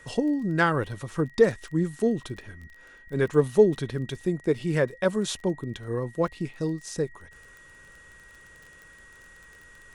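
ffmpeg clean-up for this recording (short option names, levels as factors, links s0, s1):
-af "adeclick=t=4,bandreject=f=1900:w=30"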